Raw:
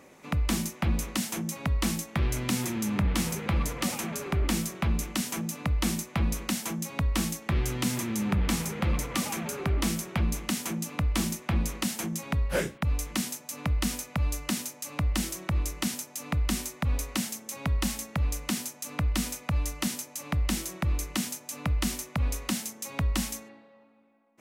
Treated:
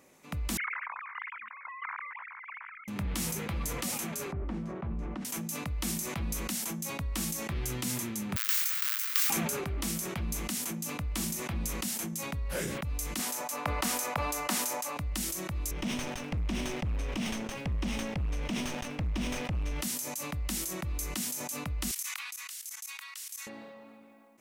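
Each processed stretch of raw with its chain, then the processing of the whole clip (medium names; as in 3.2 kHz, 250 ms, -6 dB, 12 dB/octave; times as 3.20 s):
0.57–2.88 s: formants replaced by sine waves + elliptic band-pass 990–2200 Hz, stop band 60 dB
4.32–5.25 s: low-pass 1.1 kHz + hum notches 60/120/180/240/300/360/420 Hz
8.36–9.30 s: square wave that keeps the level + steep high-pass 1.3 kHz + careless resampling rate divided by 2×, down filtered, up zero stuff
13.19–14.97 s: high-pass 260 Hz 6 dB/octave + peaking EQ 880 Hz +14 dB 2.4 oct + overload inside the chain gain 11.5 dB
15.71–19.82 s: comb filter that takes the minimum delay 0.35 ms + low-pass 2.7 kHz + waveshaping leveller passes 2
21.91–23.47 s: Bessel high-pass 1.9 kHz, order 8 + level held to a coarse grid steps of 20 dB
whole clip: treble shelf 5.3 kHz +9 dB; decay stretcher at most 21 dB/s; trim -8.5 dB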